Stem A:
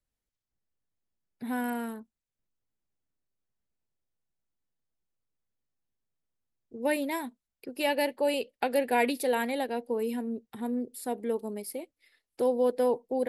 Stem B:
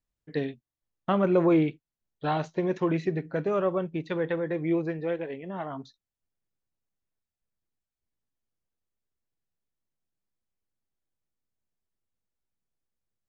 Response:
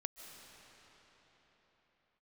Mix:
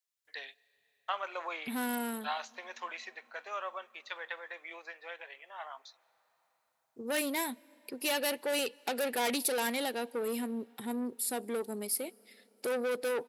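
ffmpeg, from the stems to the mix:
-filter_complex "[0:a]asoftclip=type=tanh:threshold=-28.5dB,adelay=250,volume=-2dB,asplit=2[a][b];[b]volume=-18.5dB[c];[1:a]highpass=f=750:w=0.5412,highpass=f=750:w=1.3066,volume=-7.5dB,asplit=2[d][e];[e]volume=-16dB[f];[2:a]atrim=start_sample=2205[g];[c][f]amix=inputs=2:normalize=0[h];[h][g]afir=irnorm=-1:irlink=0[i];[a][d][i]amix=inputs=3:normalize=0,highpass=110,highshelf=f=2.2k:g=11"

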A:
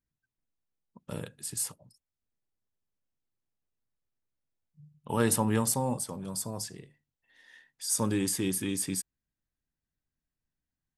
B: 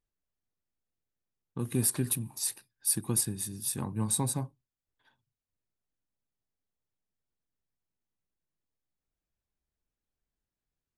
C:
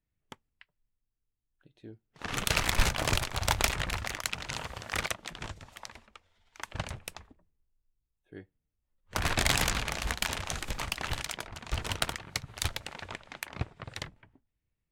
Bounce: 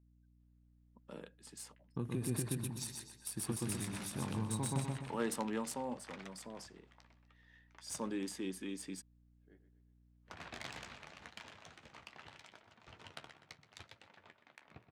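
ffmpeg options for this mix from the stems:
-filter_complex "[0:a]highpass=f=200:w=0.5412,highpass=f=200:w=1.3066,aeval=exprs='val(0)+0.00141*(sin(2*PI*60*n/s)+sin(2*PI*2*60*n/s)/2+sin(2*PI*3*60*n/s)/3+sin(2*PI*4*60*n/s)/4+sin(2*PI*5*60*n/s)/5)':c=same,volume=-9dB[a];[1:a]bandreject=f=4.8k:w=18,adelay=400,volume=-2dB,asplit=2[b][c];[c]volume=-6.5dB[d];[2:a]highpass=140,flanger=delay=8.5:depth=6.1:regen=-48:speed=0.78:shape=triangular,adelay=1150,volume=-14.5dB,asplit=2[e][f];[f]volume=-12dB[g];[b][e]amix=inputs=2:normalize=0,acompressor=threshold=-34dB:ratio=6,volume=0dB[h];[d][g]amix=inputs=2:normalize=0,aecho=0:1:124|248|372|496|620|744:1|0.45|0.202|0.0911|0.041|0.0185[i];[a][h][i]amix=inputs=3:normalize=0,adynamicsmooth=sensitivity=7:basefreq=4.8k"

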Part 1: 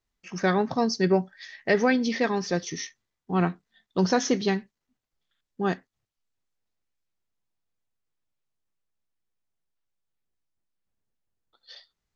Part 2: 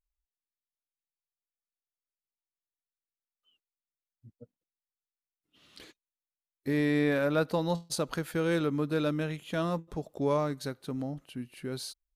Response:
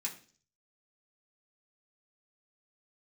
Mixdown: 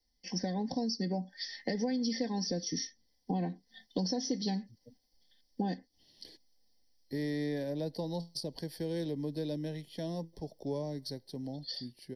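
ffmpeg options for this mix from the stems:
-filter_complex "[0:a]dynaudnorm=f=240:g=11:m=7dB,aecho=1:1:3.9:0.72,acompressor=threshold=-29dB:ratio=2.5,volume=0dB[a];[1:a]adelay=450,volume=-5.5dB[b];[a][b]amix=inputs=2:normalize=0,superequalizer=12b=0.316:14b=3.55:15b=0.282,acrossover=split=200|410[c][d][e];[c]acompressor=threshold=-38dB:ratio=4[f];[d]acompressor=threshold=-37dB:ratio=4[g];[e]acompressor=threshold=-38dB:ratio=4[h];[f][g][h]amix=inputs=3:normalize=0,asuperstop=centerf=1300:order=4:qfactor=1.3"

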